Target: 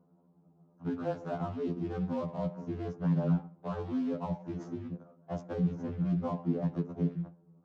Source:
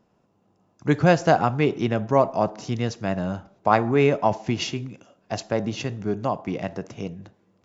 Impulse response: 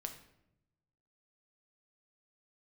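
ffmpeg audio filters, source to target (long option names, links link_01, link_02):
-filter_complex "[0:a]asuperstop=centerf=3100:order=8:qfactor=0.65,afreqshift=-25,acrusher=bits=5:mode=log:mix=0:aa=0.000001,acrossover=split=230|2000[link_01][link_02][link_03];[link_01]acompressor=threshold=-28dB:ratio=4[link_04];[link_02]acompressor=threshold=-30dB:ratio=4[link_05];[link_03]acompressor=threshold=-37dB:ratio=4[link_06];[link_04][link_05][link_06]amix=inputs=3:normalize=0,equalizer=frequency=140:width_type=o:width=1.7:gain=3,alimiter=limit=-23dB:level=0:latency=1:release=34,adynamicsmooth=sensitivity=7.5:basefreq=1500,lowpass=5200,lowshelf=frequency=110:width_type=q:width=1.5:gain=-13.5,afftfilt=real='re*2*eq(mod(b,4),0)':imag='im*2*eq(mod(b,4),0)':win_size=2048:overlap=0.75"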